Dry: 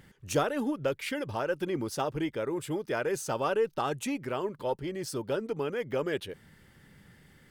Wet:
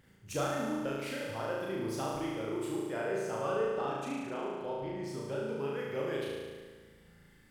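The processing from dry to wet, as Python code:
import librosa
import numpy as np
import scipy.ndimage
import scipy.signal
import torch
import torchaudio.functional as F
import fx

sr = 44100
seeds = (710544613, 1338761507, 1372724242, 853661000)

y = fx.lowpass(x, sr, hz=3200.0, slope=6, at=(2.73, 5.44))
y = fx.room_flutter(y, sr, wall_m=6.2, rt60_s=1.5)
y = y * librosa.db_to_amplitude(-9.0)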